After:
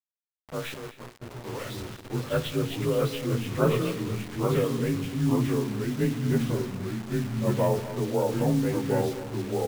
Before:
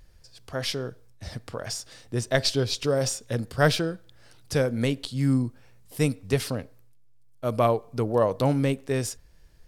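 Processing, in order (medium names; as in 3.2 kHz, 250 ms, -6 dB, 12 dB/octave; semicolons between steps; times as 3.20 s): frequency axis rescaled in octaves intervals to 89%; FDN reverb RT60 0.97 s, low-frequency decay 1.5×, high-frequency decay 0.65×, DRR 13 dB; in parallel at 0 dB: compression 6:1, threshold -33 dBFS, peak gain reduction 16 dB; on the sum: Bessel low-pass 1.9 kHz, order 2; ever faster or slower copies 385 ms, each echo -2 st, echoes 2; 0.74–1.44 s: feedback comb 120 Hz, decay 0.35 s, harmonics all, mix 80%; bit crusher 6-bit; on a send: multi-tap echo 199/253 ms -20/-15 dB; on the sum: tape noise reduction on one side only decoder only; trim -4 dB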